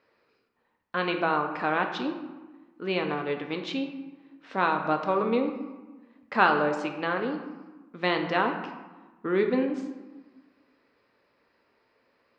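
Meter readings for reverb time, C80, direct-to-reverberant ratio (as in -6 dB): 1.2 s, 9.0 dB, 4.0 dB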